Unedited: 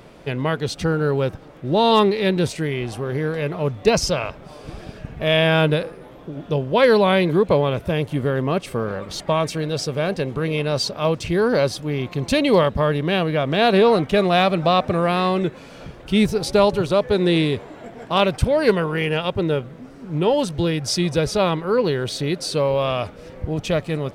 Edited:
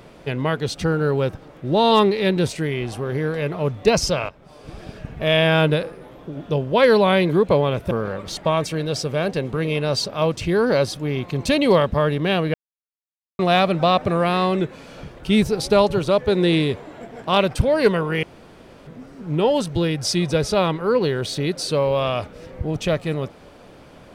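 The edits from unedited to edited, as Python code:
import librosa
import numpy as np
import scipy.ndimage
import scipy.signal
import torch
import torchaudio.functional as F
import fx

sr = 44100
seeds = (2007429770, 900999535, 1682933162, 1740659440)

y = fx.edit(x, sr, fx.fade_in_from(start_s=4.29, length_s=0.64, floor_db=-12.5),
    fx.cut(start_s=7.91, length_s=0.83),
    fx.silence(start_s=13.37, length_s=0.85),
    fx.room_tone_fill(start_s=19.06, length_s=0.64), tone=tone)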